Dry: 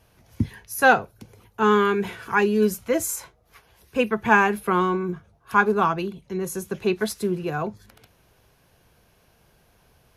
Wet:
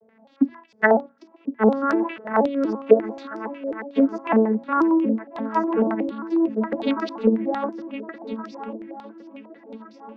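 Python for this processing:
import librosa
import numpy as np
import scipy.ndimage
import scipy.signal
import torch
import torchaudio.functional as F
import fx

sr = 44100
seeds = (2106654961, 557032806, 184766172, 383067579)

p1 = fx.vocoder_arp(x, sr, chord='major triad', root=57, every_ms=240)
p2 = fx.hum_notches(p1, sr, base_hz=60, count=4)
p3 = fx.env_lowpass_down(p2, sr, base_hz=590.0, full_db=-17.0)
p4 = fx.peak_eq(p3, sr, hz=190.0, db=-4.5, octaves=0.27)
p5 = fx.rider(p4, sr, range_db=10, speed_s=0.5)
p6 = p4 + (p5 * 10.0 ** (1.0 / 20.0))
p7 = fx.wow_flutter(p6, sr, seeds[0], rate_hz=2.1, depth_cents=25.0)
p8 = p7 + fx.echo_swing(p7, sr, ms=1416, ratio=3, feedback_pct=37, wet_db=-11.5, dry=0)
p9 = fx.filter_held_lowpass(p8, sr, hz=11.0, low_hz=530.0, high_hz=5300.0)
y = p9 * 10.0 ** (-5.0 / 20.0)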